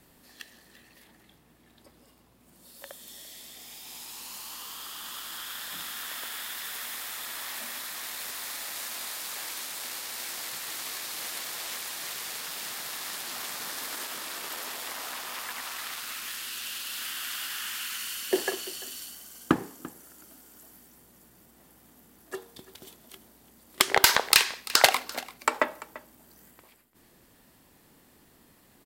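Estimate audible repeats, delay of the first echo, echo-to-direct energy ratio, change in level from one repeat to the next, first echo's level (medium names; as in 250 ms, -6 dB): 1, 341 ms, -18.5 dB, no regular repeats, -18.5 dB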